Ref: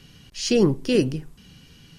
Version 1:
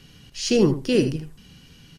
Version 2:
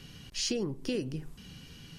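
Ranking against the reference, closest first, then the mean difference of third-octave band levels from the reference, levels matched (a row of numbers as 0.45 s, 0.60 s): 1, 2; 1.0 dB, 8.0 dB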